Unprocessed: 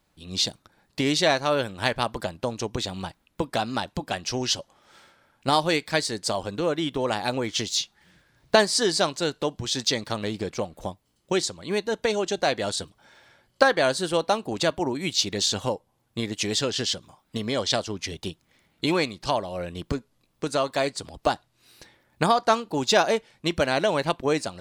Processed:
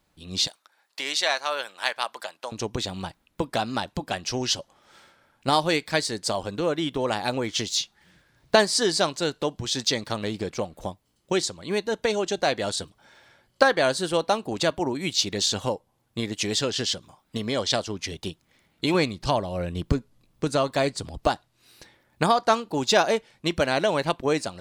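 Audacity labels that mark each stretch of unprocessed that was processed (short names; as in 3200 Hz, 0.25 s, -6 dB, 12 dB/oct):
0.470000	2.520000	HPF 840 Hz
18.940000	21.270000	low shelf 220 Hz +9 dB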